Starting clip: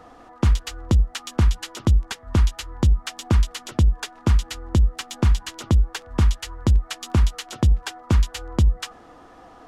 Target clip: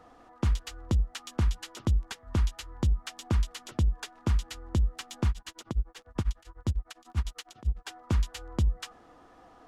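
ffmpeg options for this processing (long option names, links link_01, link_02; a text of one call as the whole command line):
ffmpeg -i in.wav -filter_complex "[0:a]asettb=1/sr,asplit=3[link_01][link_02][link_03];[link_01]atrim=end=5.294[link_04];[link_02]atrim=start=5.29:end=7.9,asetpts=PTS-STARTPTS,afade=type=in:duration=0.004:curve=qsin,afade=type=out:start_time=2.606:duration=0.004:curve=qsin,tremolo=f=10:d=0.97[link_05];[link_03]atrim=start=7.896[link_06];[link_04][link_05]acrossfade=duration=0.004:curve1=hsin:curve2=qsin[link_07];[link_07][link_06]acrossfade=duration=0.004:curve1=qsin:curve2=hsin,volume=-8.5dB" out.wav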